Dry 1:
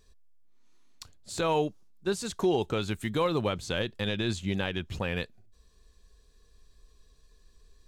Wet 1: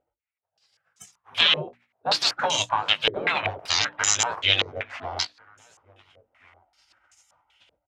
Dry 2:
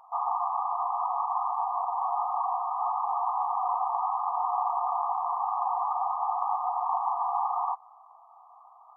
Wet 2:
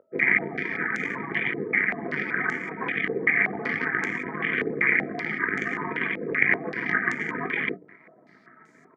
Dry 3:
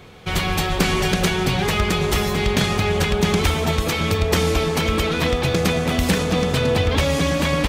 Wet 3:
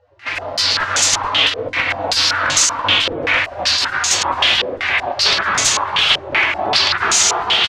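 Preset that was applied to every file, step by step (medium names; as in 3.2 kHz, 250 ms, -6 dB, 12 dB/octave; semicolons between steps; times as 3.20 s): tracing distortion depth 0.069 ms; high-pass 170 Hz 24 dB/octave; spectral gate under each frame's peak -20 dB weak; hum notches 60/120/180/240/300 Hz; in parallel at +1 dB: compression, threshold -42 dBFS; on the sum: sine folder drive 15 dB, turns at -6 dBFS; doubling 20 ms -9.5 dB; echo from a far wall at 240 m, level -24 dB; step-sequenced low-pass 5.2 Hz 480–6800 Hz; trim -7 dB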